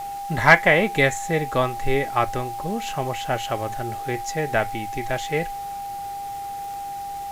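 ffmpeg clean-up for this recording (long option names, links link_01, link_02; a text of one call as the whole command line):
ffmpeg -i in.wav -af "adeclick=threshold=4,bandreject=frequency=800:width=30,afwtdn=0.005" out.wav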